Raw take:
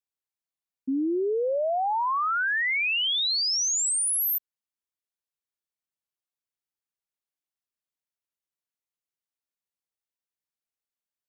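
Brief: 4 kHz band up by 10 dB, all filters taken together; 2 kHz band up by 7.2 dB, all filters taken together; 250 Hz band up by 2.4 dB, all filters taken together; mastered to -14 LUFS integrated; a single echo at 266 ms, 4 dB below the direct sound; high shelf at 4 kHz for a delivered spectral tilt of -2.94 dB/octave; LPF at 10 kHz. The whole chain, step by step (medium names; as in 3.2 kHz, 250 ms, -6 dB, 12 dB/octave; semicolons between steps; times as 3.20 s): low-pass 10 kHz; peaking EQ 250 Hz +3 dB; peaking EQ 2 kHz +5.5 dB; treble shelf 4 kHz +5 dB; peaking EQ 4 kHz +8 dB; delay 266 ms -4 dB; trim +1.5 dB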